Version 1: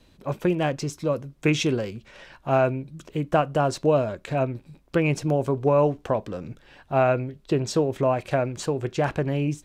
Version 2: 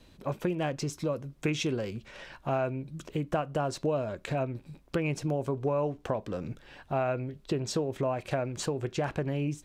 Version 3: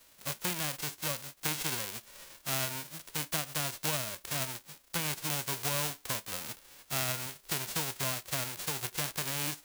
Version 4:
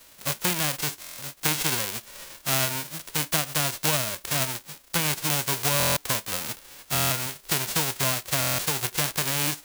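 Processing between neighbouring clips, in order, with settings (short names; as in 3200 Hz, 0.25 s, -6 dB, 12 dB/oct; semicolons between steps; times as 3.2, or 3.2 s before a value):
compressor 2.5:1, threshold -30 dBFS, peak gain reduction 10 dB
spectral whitening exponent 0.1; gain -4 dB
stuck buffer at 1/5.78/6.93/8.4, samples 1024, times 7; gain +8.5 dB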